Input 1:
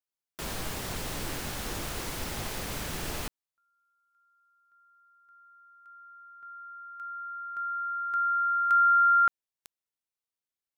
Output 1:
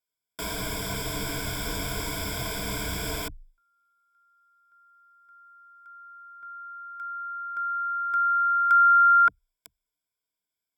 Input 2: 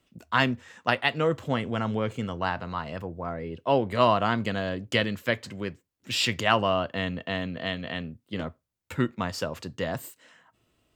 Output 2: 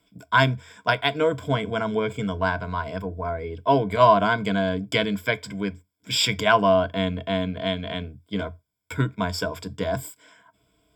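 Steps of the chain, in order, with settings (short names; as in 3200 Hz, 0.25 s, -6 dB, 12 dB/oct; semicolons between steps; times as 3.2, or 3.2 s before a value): ripple EQ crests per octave 1.7, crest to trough 16 dB; gain +1 dB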